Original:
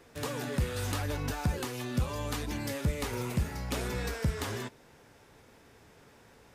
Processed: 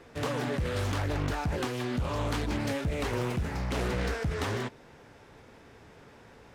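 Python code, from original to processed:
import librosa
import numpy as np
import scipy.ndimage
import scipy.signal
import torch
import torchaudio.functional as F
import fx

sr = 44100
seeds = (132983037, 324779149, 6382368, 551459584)

p1 = fx.high_shelf(x, sr, hz=6200.0, db=-11.0)
p2 = fx.over_compress(p1, sr, threshold_db=-34.0, ratio=-0.5)
p3 = p1 + (p2 * 10.0 ** (1.0 / 20.0))
p4 = fx.doppler_dist(p3, sr, depth_ms=0.46)
y = p4 * 10.0 ** (-2.5 / 20.0)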